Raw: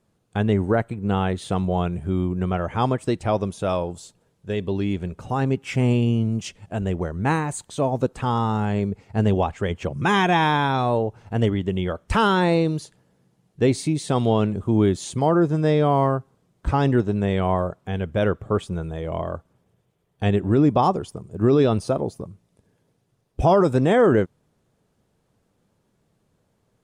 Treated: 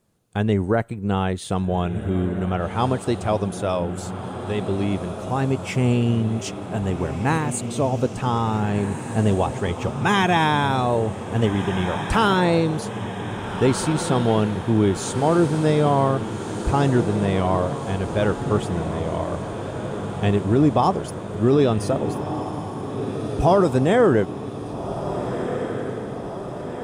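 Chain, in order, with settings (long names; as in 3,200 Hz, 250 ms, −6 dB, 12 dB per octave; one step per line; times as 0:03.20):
high-shelf EQ 7,900 Hz +8.5 dB
feedback delay with all-pass diffusion 1,639 ms, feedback 65%, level −9 dB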